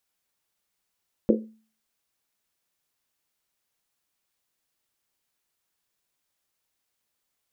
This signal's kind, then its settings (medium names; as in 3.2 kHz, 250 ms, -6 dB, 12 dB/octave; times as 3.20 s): Risset drum, pitch 220 Hz, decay 0.42 s, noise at 420 Hz, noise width 200 Hz, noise 55%